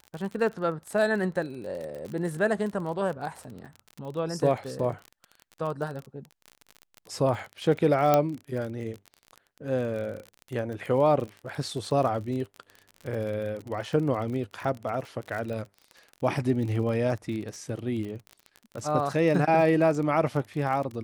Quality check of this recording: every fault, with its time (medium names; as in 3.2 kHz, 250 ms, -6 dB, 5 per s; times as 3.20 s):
crackle 34 per s -33 dBFS
8.14 s: pop -8 dBFS